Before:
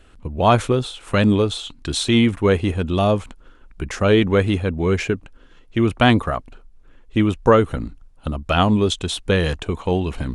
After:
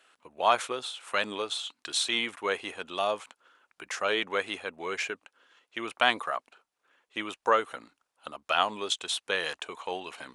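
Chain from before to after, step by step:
high-pass filter 780 Hz 12 dB per octave
level −4.5 dB

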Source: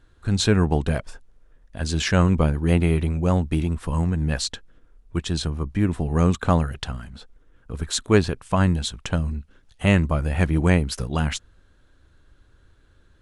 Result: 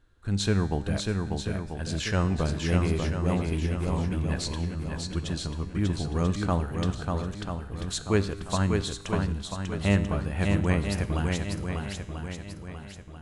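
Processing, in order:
tuned comb filter 100 Hz, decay 1.2 s, harmonics all, mix 60%
feedback echo with a long and a short gap by turns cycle 989 ms, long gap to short 1.5 to 1, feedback 38%, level −4 dB

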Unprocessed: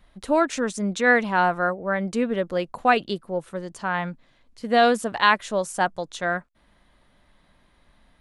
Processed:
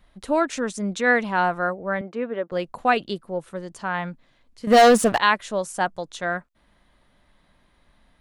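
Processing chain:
0:02.01–0:02.52: band-pass filter 320–2,100 Hz
0:04.67–0:05.18: leveller curve on the samples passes 3
level −1 dB

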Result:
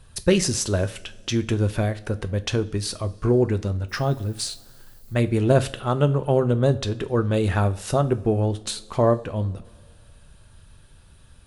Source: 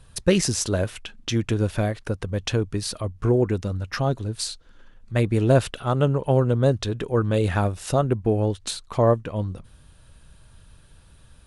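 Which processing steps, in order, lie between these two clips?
0:03.88–0:05.13: background noise violet −56 dBFS
coupled-rooms reverb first 0.33 s, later 2.3 s, from −20 dB, DRR 10.5 dB

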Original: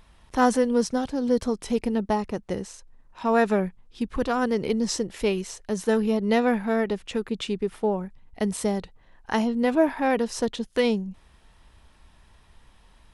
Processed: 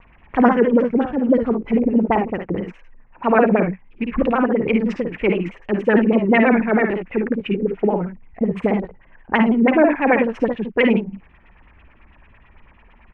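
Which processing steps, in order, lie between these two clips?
one scale factor per block 7 bits
high shelf with overshoot 3,100 Hz −9 dB, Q 3
auto-filter low-pass sine 9 Hz 220–3,100 Hz
ambience of single reflections 55 ms −6.5 dB, 72 ms −10 dB
pitch modulation by a square or saw wave saw down 6.2 Hz, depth 100 cents
level +3 dB

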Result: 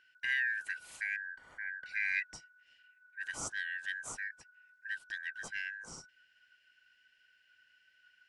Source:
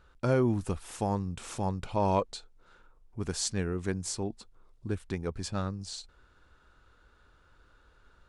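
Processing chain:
band-splitting scrambler in four parts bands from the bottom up 4123
0:01.16–0:01.86: Savitzky-Golay smoothing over 41 samples
level −7.5 dB

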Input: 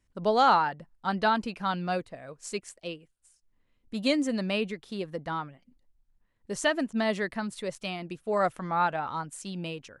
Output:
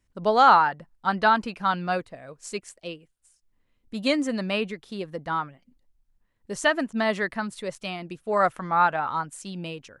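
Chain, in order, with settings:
dynamic equaliser 1,300 Hz, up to +6 dB, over −39 dBFS, Q 0.84
level +1 dB

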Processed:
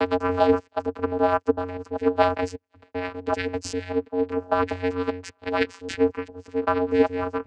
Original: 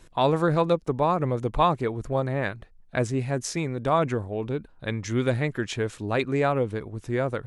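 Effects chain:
slices reordered back to front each 196 ms, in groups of 4
spectral tilt +4.5 dB per octave
hollow resonant body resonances 440/750/1,300/2,500 Hz, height 16 dB, ringing for 45 ms
in parallel at −12 dB: comparator with hysteresis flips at −12.5 dBFS
on the sum: channel vocoder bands 8, square 90.7 Hz
level −2.5 dB

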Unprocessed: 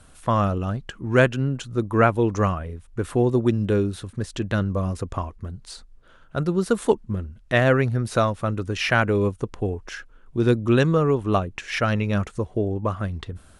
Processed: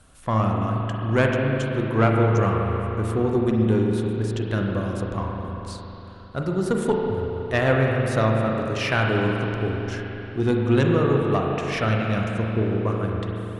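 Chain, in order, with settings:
one-sided soft clipper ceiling −11 dBFS
spring reverb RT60 3.6 s, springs 36/45 ms, chirp 30 ms, DRR −0.5 dB
level −2.5 dB

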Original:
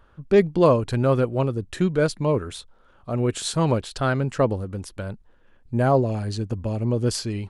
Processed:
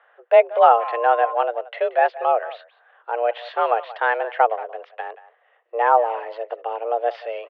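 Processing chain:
far-end echo of a speakerphone 180 ms, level −16 dB
0:00.58–0:01.33: steady tone 820 Hz −31 dBFS
single-sideband voice off tune +230 Hz 260–2,800 Hz
level +4 dB

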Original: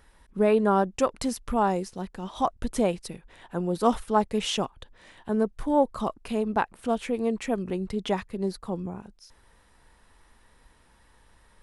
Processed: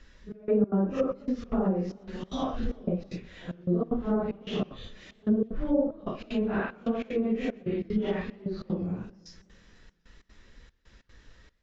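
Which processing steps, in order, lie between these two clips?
random phases in long frames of 200 ms
Butterworth low-pass 7,200 Hz 96 dB per octave
parametric band 880 Hz −14 dB 0.82 octaves
treble cut that deepens with the level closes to 660 Hz, closed at −23 dBFS
in parallel at −2 dB: downward compressor, threshold −35 dBFS, peak gain reduction 14 dB
on the sum: gate pattern "xxxx..xx.x" 188 BPM −24 dB
feedback echo with a swinging delay time 123 ms, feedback 68%, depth 167 cents, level −23.5 dB

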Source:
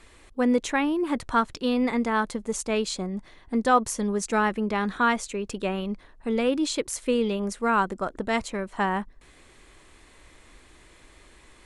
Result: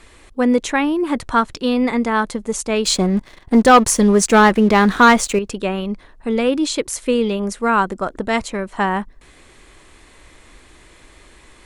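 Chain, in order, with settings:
0:02.85–0:05.39: leveller curve on the samples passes 2
level +6.5 dB

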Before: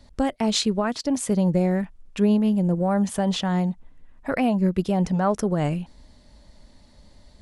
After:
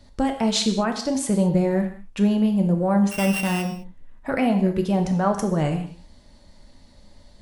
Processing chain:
0:03.11–0:03.62: samples sorted by size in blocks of 16 samples
reverb whose tail is shaped and stops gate 240 ms falling, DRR 4.5 dB

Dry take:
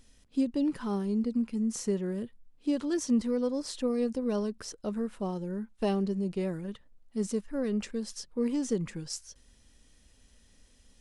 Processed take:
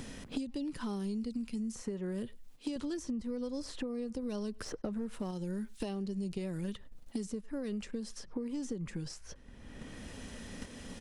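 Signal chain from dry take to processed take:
low-shelf EQ 150 Hz +8 dB
noise gate −47 dBFS, range −12 dB
0:01.81–0:02.76: low-shelf EQ 330 Hz −9 dB
far-end echo of a speakerphone 100 ms, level −29 dB
downward compressor 4 to 1, threshold −40 dBFS, peak gain reduction 17 dB
0:04.66–0:05.31: leveller curve on the samples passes 1
multiband upward and downward compressor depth 100%
level +2.5 dB

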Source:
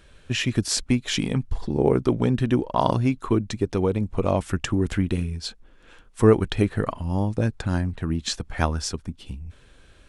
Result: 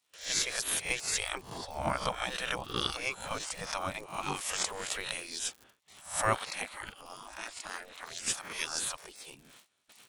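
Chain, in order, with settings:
peak hold with a rise ahead of every peak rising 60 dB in 0.40 s
surface crackle 110 per second −45 dBFS
noise gate with hold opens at −38 dBFS
bass and treble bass −8 dB, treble 0 dB
0:06.36–0:08.27: amplitude modulation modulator 270 Hz, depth 90%
gate on every frequency bin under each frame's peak −15 dB weak
high-shelf EQ 4,400 Hz +7 dB

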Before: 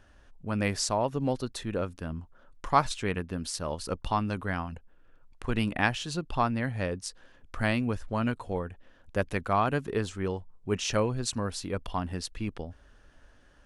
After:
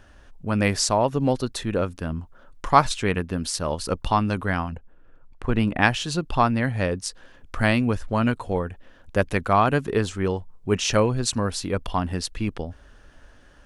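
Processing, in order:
0:04.70–0:05.82: high-shelf EQ 2,600 Hz −11 dB
level +7 dB

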